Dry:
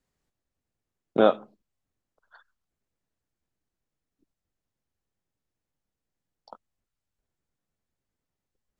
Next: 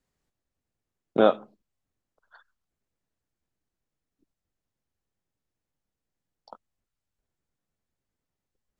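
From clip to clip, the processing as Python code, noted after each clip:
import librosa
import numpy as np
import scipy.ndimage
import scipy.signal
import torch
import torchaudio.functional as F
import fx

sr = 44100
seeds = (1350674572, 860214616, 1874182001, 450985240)

y = x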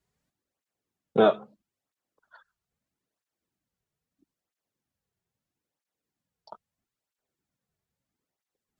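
y = fx.flanger_cancel(x, sr, hz=0.77, depth_ms=4.0)
y = F.gain(torch.from_numpy(y), 3.5).numpy()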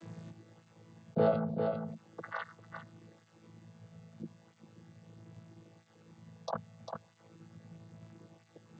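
y = fx.chord_vocoder(x, sr, chord='bare fifth', root=45)
y = y + 10.0 ** (-18.0 / 20.0) * np.pad(y, (int(399 * sr / 1000.0), 0))[:len(y)]
y = fx.env_flatten(y, sr, amount_pct=70)
y = F.gain(torch.from_numpy(y), -7.5).numpy()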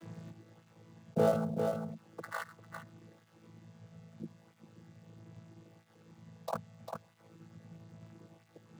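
y = fx.dead_time(x, sr, dead_ms=0.057)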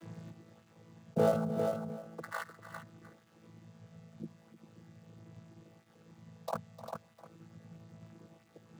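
y = x + 10.0 ** (-14.0 / 20.0) * np.pad(x, (int(305 * sr / 1000.0), 0))[:len(x)]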